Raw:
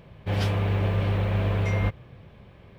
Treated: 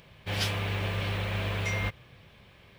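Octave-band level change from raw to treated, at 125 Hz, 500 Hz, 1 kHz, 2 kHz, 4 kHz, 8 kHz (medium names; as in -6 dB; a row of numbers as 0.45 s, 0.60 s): -8.0 dB, -6.0 dB, -3.0 dB, +2.0 dB, +5.0 dB, no reading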